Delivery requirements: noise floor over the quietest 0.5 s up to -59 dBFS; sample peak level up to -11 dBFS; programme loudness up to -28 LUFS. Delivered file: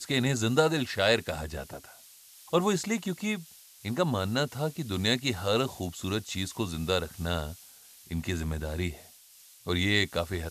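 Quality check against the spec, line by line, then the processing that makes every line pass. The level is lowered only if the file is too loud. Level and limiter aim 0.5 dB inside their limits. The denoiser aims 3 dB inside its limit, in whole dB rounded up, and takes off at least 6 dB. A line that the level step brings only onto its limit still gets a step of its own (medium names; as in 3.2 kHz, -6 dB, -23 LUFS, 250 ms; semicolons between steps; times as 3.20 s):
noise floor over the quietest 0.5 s -55 dBFS: fail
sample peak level -10.5 dBFS: fail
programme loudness -29.5 LUFS: pass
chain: noise reduction 7 dB, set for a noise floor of -55 dBFS; peak limiter -11.5 dBFS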